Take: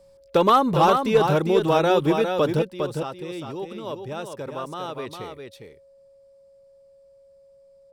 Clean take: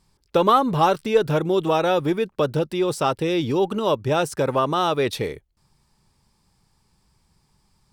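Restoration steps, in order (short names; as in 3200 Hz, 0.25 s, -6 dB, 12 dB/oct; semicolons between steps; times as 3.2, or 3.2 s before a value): clip repair -9.5 dBFS; notch 550 Hz, Q 30; inverse comb 0.405 s -6 dB; gain correction +12 dB, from 2.62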